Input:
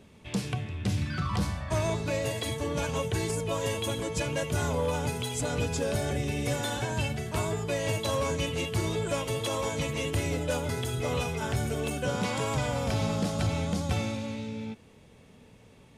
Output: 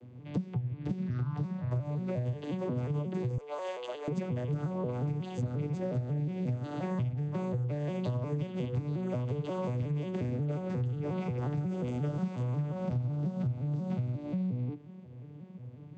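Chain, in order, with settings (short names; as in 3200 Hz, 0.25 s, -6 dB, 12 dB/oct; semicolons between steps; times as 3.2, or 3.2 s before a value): arpeggiated vocoder minor triad, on B2, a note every 0.179 s; 3.38–4.08 HPF 530 Hz 24 dB/oct; tilt -2 dB/oct; compressor 10:1, threshold -33 dBFS, peak gain reduction 19 dB; 11.69–12.43 high shelf 5400 Hz +10 dB; gain +3.5 dB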